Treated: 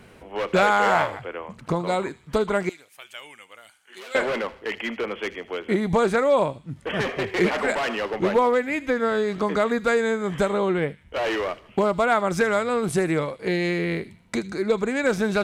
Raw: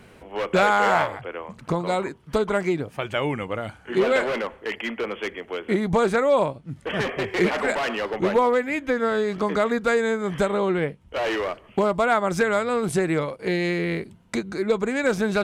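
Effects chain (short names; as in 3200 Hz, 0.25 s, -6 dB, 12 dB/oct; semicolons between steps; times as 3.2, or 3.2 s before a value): 2.69–4.15 differentiator; on a send: thin delay 78 ms, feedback 44%, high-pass 2600 Hz, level -14 dB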